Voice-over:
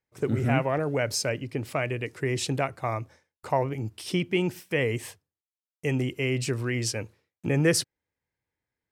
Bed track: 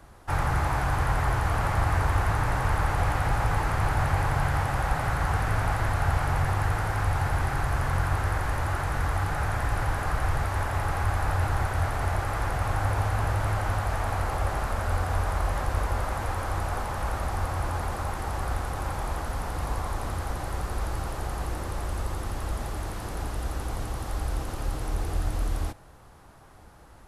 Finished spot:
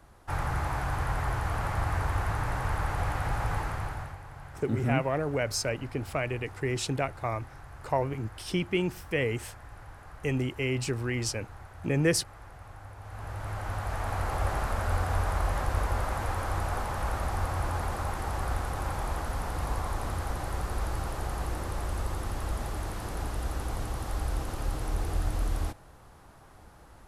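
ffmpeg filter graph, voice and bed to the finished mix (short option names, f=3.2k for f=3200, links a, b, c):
-filter_complex "[0:a]adelay=4400,volume=-2.5dB[a];[1:a]volume=13.5dB,afade=t=out:st=3.56:d=0.62:silence=0.177828,afade=t=in:st=13:d=1.47:silence=0.11885[b];[a][b]amix=inputs=2:normalize=0"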